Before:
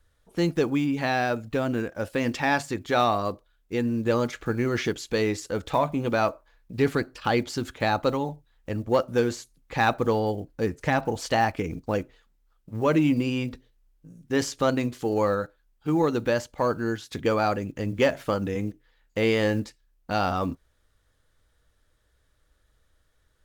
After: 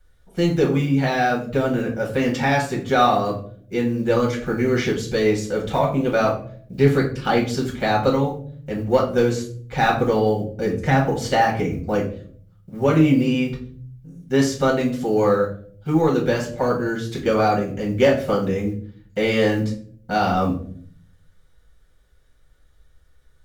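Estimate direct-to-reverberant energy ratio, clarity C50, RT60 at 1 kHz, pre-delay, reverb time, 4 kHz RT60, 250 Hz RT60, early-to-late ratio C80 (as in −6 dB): −3.0 dB, 8.5 dB, 0.40 s, 5 ms, 0.55 s, 0.35 s, 0.90 s, 13.0 dB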